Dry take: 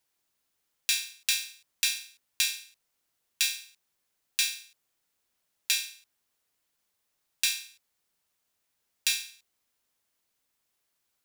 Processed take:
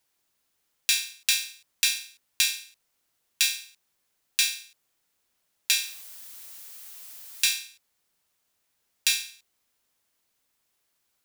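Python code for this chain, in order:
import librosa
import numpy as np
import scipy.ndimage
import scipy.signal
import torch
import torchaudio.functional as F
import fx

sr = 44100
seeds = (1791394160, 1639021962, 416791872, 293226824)

y = fx.dmg_noise_colour(x, sr, seeds[0], colour='blue', level_db=-48.0, at=(5.77, 7.55), fade=0.02)
y = F.gain(torch.from_numpy(y), 3.5).numpy()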